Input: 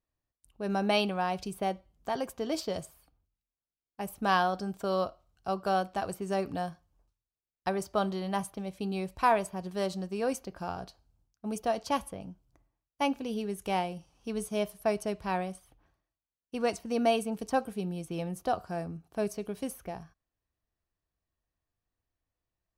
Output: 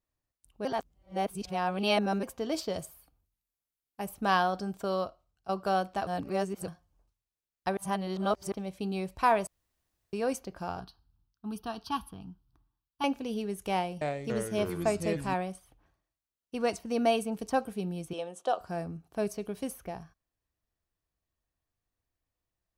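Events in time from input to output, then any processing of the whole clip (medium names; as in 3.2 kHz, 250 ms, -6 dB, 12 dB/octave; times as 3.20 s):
0.65–2.23 s: reverse
2.79–4.05 s: peaking EQ 13 kHz +8 dB
4.81–5.49 s: fade out linear, to -12 dB
6.07–6.68 s: reverse
7.77–8.52 s: reverse
9.47–10.13 s: room tone
10.80–13.04 s: static phaser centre 2.1 kHz, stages 6
13.73–15.34 s: ever faster or slower copies 282 ms, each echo -4 st, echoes 3
18.13–18.61 s: cabinet simulation 440–9300 Hz, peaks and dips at 540 Hz +5 dB, 2.1 kHz -7 dB, 3.3 kHz +7 dB, 4.8 kHz -7 dB, 7.8 kHz +5 dB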